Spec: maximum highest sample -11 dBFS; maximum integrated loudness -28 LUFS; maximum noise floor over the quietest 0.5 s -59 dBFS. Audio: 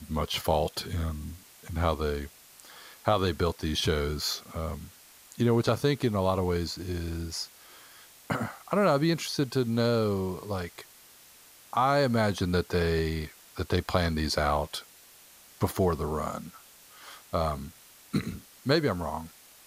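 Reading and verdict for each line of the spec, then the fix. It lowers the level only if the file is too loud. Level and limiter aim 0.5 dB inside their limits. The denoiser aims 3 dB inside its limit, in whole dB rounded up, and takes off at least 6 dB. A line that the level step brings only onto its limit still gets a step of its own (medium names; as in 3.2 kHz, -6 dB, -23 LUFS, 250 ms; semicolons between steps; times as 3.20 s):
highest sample -9.5 dBFS: fail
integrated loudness -29.0 LUFS: pass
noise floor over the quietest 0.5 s -54 dBFS: fail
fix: noise reduction 8 dB, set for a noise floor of -54 dBFS; peak limiter -11.5 dBFS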